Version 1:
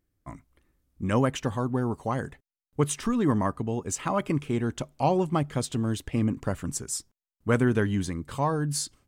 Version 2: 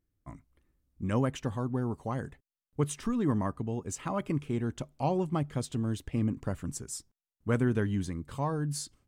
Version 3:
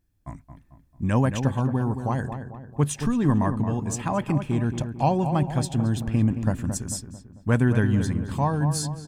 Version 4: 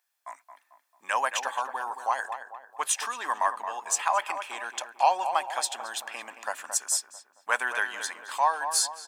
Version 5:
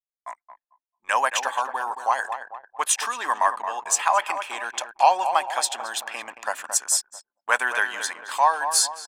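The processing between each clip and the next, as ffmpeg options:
-af "lowshelf=f=340:g=5,volume=-7.5dB"
-filter_complex "[0:a]aecho=1:1:1.2:0.38,asplit=2[a][b];[b]adelay=222,lowpass=f=1.7k:p=1,volume=-8dB,asplit=2[c][d];[d]adelay=222,lowpass=f=1.7k:p=1,volume=0.48,asplit=2[e][f];[f]adelay=222,lowpass=f=1.7k:p=1,volume=0.48,asplit=2[g][h];[h]adelay=222,lowpass=f=1.7k:p=1,volume=0.48,asplit=2[i][j];[j]adelay=222,lowpass=f=1.7k:p=1,volume=0.48,asplit=2[k][l];[l]adelay=222,lowpass=f=1.7k:p=1,volume=0.48[m];[c][e][g][i][k][m]amix=inputs=6:normalize=0[n];[a][n]amix=inputs=2:normalize=0,volume=6.5dB"
-af "highpass=f=790:w=0.5412,highpass=f=790:w=1.3066,volume=6dB"
-af "anlmdn=0.0158,volume=5dB"

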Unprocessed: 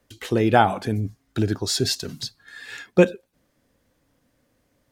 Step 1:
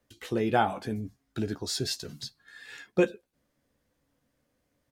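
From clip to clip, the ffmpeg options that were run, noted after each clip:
-filter_complex "[0:a]asplit=2[a][b];[b]adelay=14,volume=-8dB[c];[a][c]amix=inputs=2:normalize=0,volume=-8.5dB"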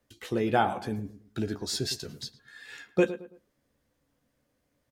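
-filter_complex "[0:a]asplit=2[a][b];[b]adelay=110,lowpass=f=1.7k:p=1,volume=-13dB,asplit=2[c][d];[d]adelay=110,lowpass=f=1.7k:p=1,volume=0.34,asplit=2[e][f];[f]adelay=110,lowpass=f=1.7k:p=1,volume=0.34[g];[a][c][e][g]amix=inputs=4:normalize=0"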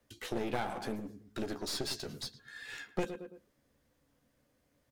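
-filter_complex "[0:a]acrossover=split=190|4700[a][b][c];[a]acompressor=threshold=-49dB:ratio=4[d];[b]acompressor=threshold=-31dB:ratio=4[e];[c]acompressor=threshold=-43dB:ratio=4[f];[d][e][f]amix=inputs=3:normalize=0,aeval=exprs='clip(val(0),-1,0.0075)':c=same,volume=1dB"

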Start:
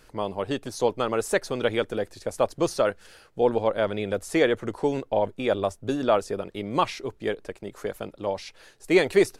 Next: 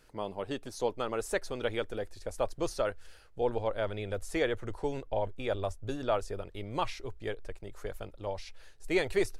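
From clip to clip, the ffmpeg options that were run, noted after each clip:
-af "asubboost=boost=9:cutoff=68,bandreject=f=1.1k:w=27,volume=-7.5dB"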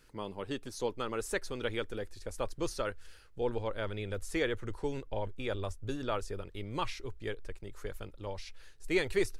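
-af "equalizer=f=680:t=o:w=0.67:g=-9"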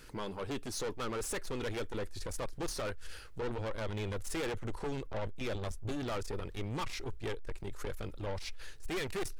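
-filter_complex "[0:a]asplit=2[a][b];[b]acompressor=threshold=-43dB:ratio=6,volume=1dB[c];[a][c]amix=inputs=2:normalize=0,aeval=exprs='(tanh(70.8*val(0)+0.25)-tanh(0.25))/70.8':c=same,volume=3.5dB"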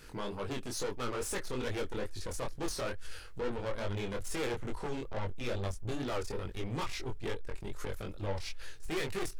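-af "flanger=delay=20:depth=5.3:speed=2.3,volume=4dB"

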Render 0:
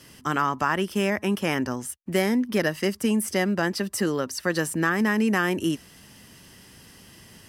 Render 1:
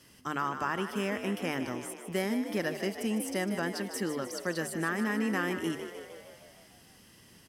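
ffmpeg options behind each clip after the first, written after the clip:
-filter_complex "[0:a]bandreject=f=50:t=h:w=6,bandreject=f=100:t=h:w=6,bandreject=f=150:t=h:w=6,asplit=2[a][b];[b]asplit=8[c][d][e][f][g][h][i][j];[c]adelay=153,afreqshift=56,volume=-9.5dB[k];[d]adelay=306,afreqshift=112,volume=-13.5dB[l];[e]adelay=459,afreqshift=168,volume=-17.5dB[m];[f]adelay=612,afreqshift=224,volume=-21.5dB[n];[g]adelay=765,afreqshift=280,volume=-25.6dB[o];[h]adelay=918,afreqshift=336,volume=-29.6dB[p];[i]adelay=1071,afreqshift=392,volume=-33.6dB[q];[j]adelay=1224,afreqshift=448,volume=-37.6dB[r];[k][l][m][n][o][p][q][r]amix=inputs=8:normalize=0[s];[a][s]amix=inputs=2:normalize=0,volume=-8.5dB"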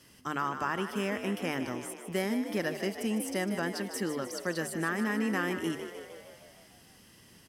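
-af anull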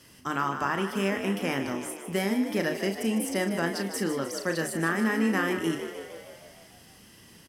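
-filter_complex "[0:a]asplit=2[a][b];[b]adelay=36,volume=-7.5dB[c];[a][c]amix=inputs=2:normalize=0,volume=3.5dB"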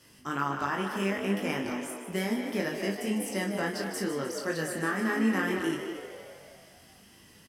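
-filter_complex "[0:a]flanger=delay=19.5:depth=2.4:speed=0.66,asplit=2[a][b];[b]adelay=220,highpass=300,lowpass=3.4k,asoftclip=type=hard:threshold=-23.5dB,volume=-7dB[c];[a][c]amix=inputs=2:normalize=0"

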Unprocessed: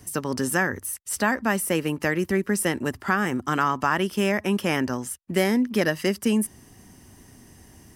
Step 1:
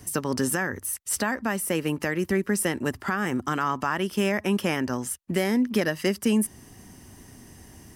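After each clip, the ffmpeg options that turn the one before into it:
-af "alimiter=limit=-15.5dB:level=0:latency=1:release=376,volume=2dB"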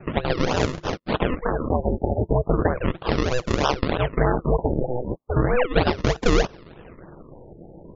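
-af "aeval=exprs='val(0)*sin(2*PI*250*n/s)':c=same,acrusher=samples=39:mix=1:aa=0.000001:lfo=1:lforange=39:lforate=3.2,afftfilt=real='re*lt(b*sr/1024,870*pow(7400/870,0.5+0.5*sin(2*PI*0.36*pts/sr)))':imag='im*lt(b*sr/1024,870*pow(7400/870,0.5+0.5*sin(2*PI*0.36*pts/sr)))':win_size=1024:overlap=0.75,volume=7.5dB"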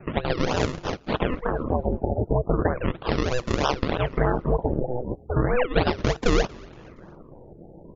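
-filter_complex "[0:a]asplit=4[a][b][c][d];[b]adelay=234,afreqshift=-77,volume=-24dB[e];[c]adelay=468,afreqshift=-154,volume=-31.1dB[f];[d]adelay=702,afreqshift=-231,volume=-38.3dB[g];[a][e][f][g]amix=inputs=4:normalize=0,volume=-2dB"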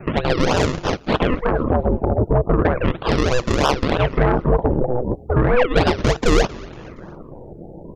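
-af "asoftclip=type=tanh:threshold=-15.5dB,volume=8.5dB"

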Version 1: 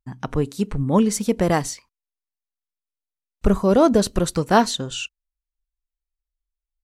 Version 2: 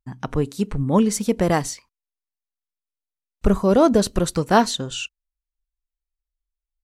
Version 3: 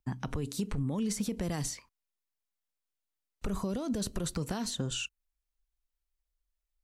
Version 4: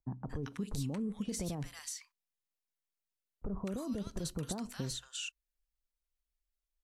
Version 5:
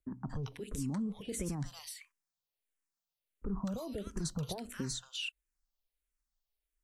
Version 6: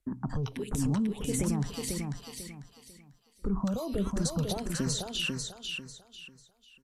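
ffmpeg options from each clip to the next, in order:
-af anull
-filter_complex "[0:a]acompressor=threshold=-17dB:ratio=6,alimiter=limit=-20dB:level=0:latency=1:release=30,acrossover=split=250|2600|6400[a][b][c][d];[a]acompressor=threshold=-33dB:ratio=4[e];[b]acompressor=threshold=-40dB:ratio=4[f];[c]acompressor=threshold=-45dB:ratio=4[g];[d]acompressor=threshold=-41dB:ratio=4[h];[e][f][g][h]amix=inputs=4:normalize=0,volume=1dB"
-filter_complex "[0:a]acrossover=split=1100[a][b];[b]adelay=230[c];[a][c]amix=inputs=2:normalize=0,volume=-4.5dB"
-filter_complex "[0:a]asplit=2[a][b];[b]afreqshift=-1.5[c];[a][c]amix=inputs=2:normalize=1,volume=3.5dB"
-filter_complex "[0:a]asplit=2[a][b];[b]aecho=0:1:495|990|1485|1980:0.596|0.173|0.0501|0.0145[c];[a][c]amix=inputs=2:normalize=0,aresample=32000,aresample=44100,volume=6.5dB"

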